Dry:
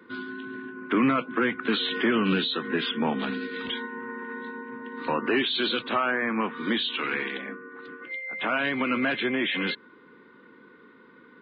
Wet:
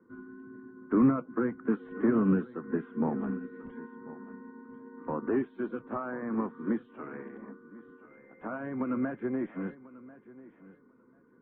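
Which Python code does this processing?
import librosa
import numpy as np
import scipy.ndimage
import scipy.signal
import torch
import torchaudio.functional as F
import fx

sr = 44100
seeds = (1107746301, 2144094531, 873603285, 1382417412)

y = scipy.signal.sosfilt(scipy.signal.butter(4, 1500.0, 'lowpass', fs=sr, output='sos'), x)
y = fx.tilt_eq(y, sr, slope=-3.0)
y = fx.echo_feedback(y, sr, ms=1041, feedback_pct=17, wet_db=-14)
y = fx.upward_expand(y, sr, threshold_db=-32.0, expansion=1.5)
y = y * 10.0 ** (-5.0 / 20.0)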